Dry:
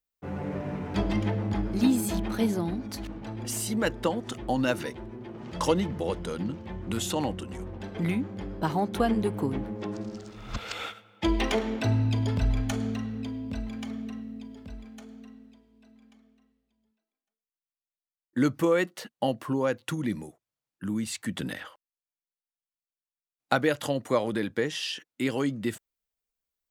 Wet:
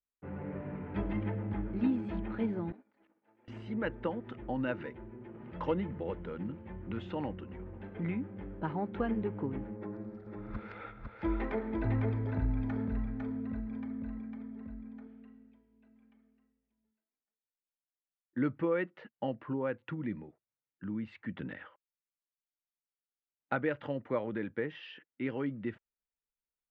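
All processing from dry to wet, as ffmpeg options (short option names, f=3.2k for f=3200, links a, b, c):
-filter_complex "[0:a]asettb=1/sr,asplit=3[a][b][c];[a]atrim=end=2.724[d];[b]atrim=start=2.72:end=3.48,asetpts=PTS-STARTPTS,afade=t=in:d=0.004:c=qsin,afade=t=out:st=0.756:d=0.004:c=qsin,acrossover=split=4000[e][f];[f]acompressor=threshold=-53dB:ratio=4:attack=1:release=60[g];[e][g]amix=inputs=2:normalize=0,agate=range=-33dB:threshold=-26dB:ratio=3:release=100:detection=peak,highpass=430[h];[c]atrim=start=3.476[i];[d][h]acrossfade=d=0.004:c1=hsin:c2=qsin[j];[j][i]acrossfade=d=0.004:c1=qsin:c2=hsin,asettb=1/sr,asplit=3[k][l][m];[k]atrim=end=9.764[n];[l]atrim=start=9.76:end=15.07,asetpts=PTS-STARTPTS,afade=t=in:d=0.004:c=qsin,afade=t=out:st=5.306:d=0.004:c=qsin,equalizer=f=2.9k:t=o:w=0.47:g=-13,aecho=1:1:503:0.668,atrim=end_sample=234171[o];[m]atrim=start=15.066[p];[n][o]acrossfade=d=0.004:c1=hsin:c2=qsin[q];[q][p]acrossfade=d=0.004:c1=qsin:c2=hsin,lowpass=f=2.4k:w=0.5412,lowpass=f=2.4k:w=1.3066,equalizer=f=710:t=o:w=0.25:g=-6,bandreject=f=1.1k:w=14,volume=-7dB"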